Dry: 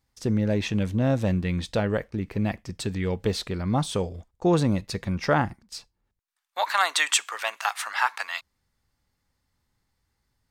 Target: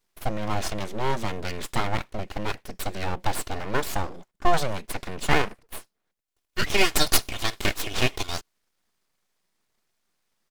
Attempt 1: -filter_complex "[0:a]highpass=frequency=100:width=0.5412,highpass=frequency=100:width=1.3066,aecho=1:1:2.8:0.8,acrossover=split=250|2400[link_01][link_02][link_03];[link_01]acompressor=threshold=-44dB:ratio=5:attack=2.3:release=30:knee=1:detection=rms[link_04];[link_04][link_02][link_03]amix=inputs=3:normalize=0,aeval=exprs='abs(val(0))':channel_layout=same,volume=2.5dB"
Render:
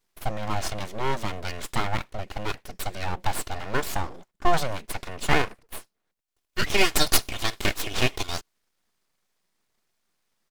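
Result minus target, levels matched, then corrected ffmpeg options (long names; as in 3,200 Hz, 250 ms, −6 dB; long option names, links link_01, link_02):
downward compressor: peak gain reduction +8 dB
-filter_complex "[0:a]highpass=frequency=100:width=0.5412,highpass=frequency=100:width=1.3066,aecho=1:1:2.8:0.8,acrossover=split=250|2400[link_01][link_02][link_03];[link_01]acompressor=threshold=-34dB:ratio=5:attack=2.3:release=30:knee=1:detection=rms[link_04];[link_04][link_02][link_03]amix=inputs=3:normalize=0,aeval=exprs='abs(val(0))':channel_layout=same,volume=2.5dB"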